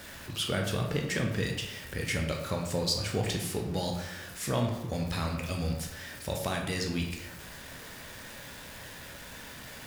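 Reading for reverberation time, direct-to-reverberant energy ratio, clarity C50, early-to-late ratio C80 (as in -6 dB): 0.90 s, 1.0 dB, 5.0 dB, 7.5 dB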